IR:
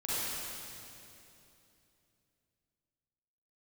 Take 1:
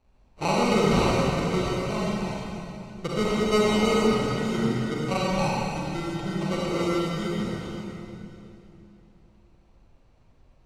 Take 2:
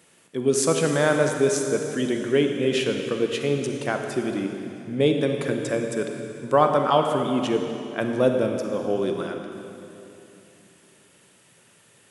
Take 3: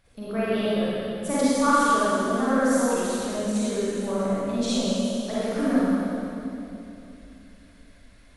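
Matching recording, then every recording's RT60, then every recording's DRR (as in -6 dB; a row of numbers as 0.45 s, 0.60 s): 3; 2.9 s, 2.9 s, 2.9 s; -6.0 dB, 4.0 dB, -11.0 dB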